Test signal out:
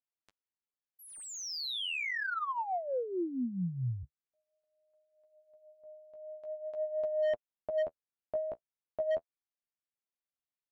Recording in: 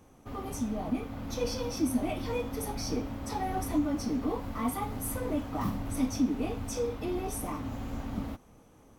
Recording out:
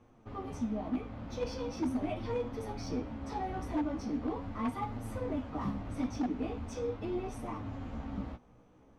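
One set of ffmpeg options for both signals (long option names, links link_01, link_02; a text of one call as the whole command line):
ffmpeg -i in.wav -af "flanger=delay=8.3:depth=8.5:regen=20:speed=0.41:shape=sinusoidal,aeval=exprs='0.0531*(abs(mod(val(0)/0.0531+3,4)-2)-1)':channel_layout=same,adynamicsmooth=sensitivity=3:basefreq=4200" out.wav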